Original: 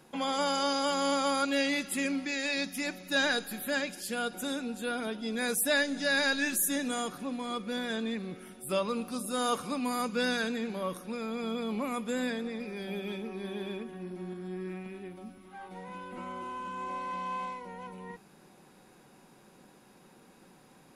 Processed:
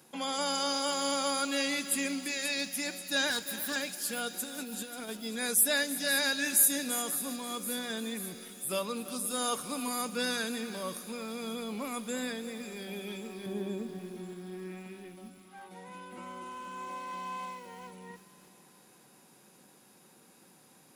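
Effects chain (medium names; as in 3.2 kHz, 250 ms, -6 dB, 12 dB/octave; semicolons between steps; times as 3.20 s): 3.30–3.76 s: comb filter that takes the minimum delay 0.56 ms; 4.44–5.09 s: compressor with a negative ratio -37 dBFS, ratio -0.5; 13.46–13.99 s: tilt shelf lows +8 dB; high-pass 95 Hz; treble shelf 4.9 kHz +12 dB; feedback echo behind a high-pass 535 ms, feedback 63%, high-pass 4.1 kHz, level -11.5 dB; reverberation RT60 4.4 s, pre-delay 105 ms, DRR 19.5 dB; bit-crushed delay 339 ms, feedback 35%, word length 7-bit, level -13.5 dB; trim -4 dB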